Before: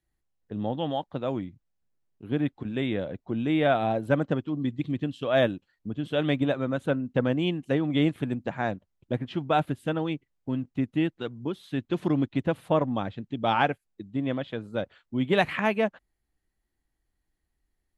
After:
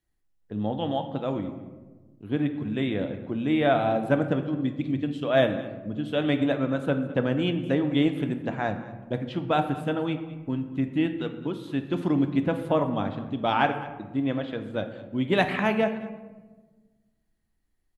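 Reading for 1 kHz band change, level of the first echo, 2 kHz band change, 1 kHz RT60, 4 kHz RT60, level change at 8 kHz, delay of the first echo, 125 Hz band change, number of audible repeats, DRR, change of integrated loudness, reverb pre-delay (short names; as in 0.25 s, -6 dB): +1.0 dB, -18.5 dB, +1.0 dB, 1.1 s, 0.65 s, n/a, 0.212 s, +0.5 dB, 1, 6.5 dB, +1.0 dB, 3 ms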